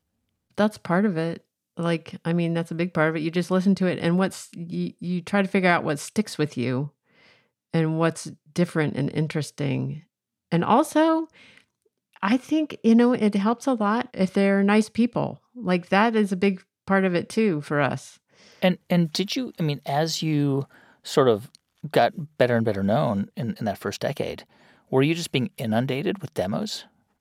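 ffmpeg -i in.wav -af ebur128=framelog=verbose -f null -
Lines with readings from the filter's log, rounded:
Integrated loudness:
  I:         -24.0 LUFS
  Threshold: -34.5 LUFS
Loudness range:
  LRA:         4.3 LU
  Threshold: -44.4 LUFS
  LRA low:   -26.6 LUFS
  LRA high:  -22.4 LUFS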